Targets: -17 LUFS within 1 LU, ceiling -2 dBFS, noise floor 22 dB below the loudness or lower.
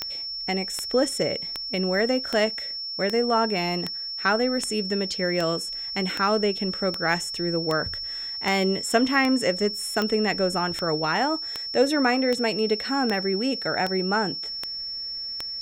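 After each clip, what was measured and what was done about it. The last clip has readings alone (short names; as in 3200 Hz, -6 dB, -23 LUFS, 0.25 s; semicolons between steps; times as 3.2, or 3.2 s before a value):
clicks 21; steady tone 5400 Hz; tone level -30 dBFS; loudness -24.5 LUFS; peak -6.5 dBFS; loudness target -17.0 LUFS
-> de-click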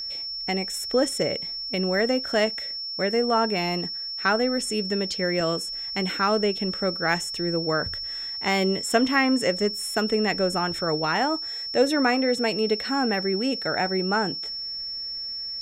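clicks 0; steady tone 5400 Hz; tone level -30 dBFS
-> notch 5400 Hz, Q 30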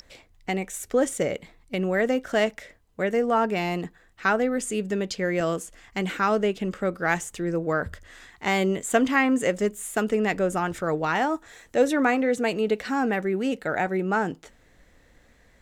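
steady tone none; loudness -25.5 LUFS; peak -7.0 dBFS; loudness target -17.0 LUFS
-> gain +8.5 dB; limiter -2 dBFS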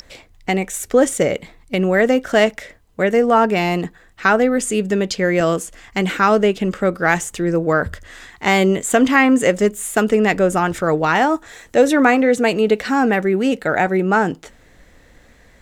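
loudness -17.0 LUFS; peak -2.0 dBFS; noise floor -50 dBFS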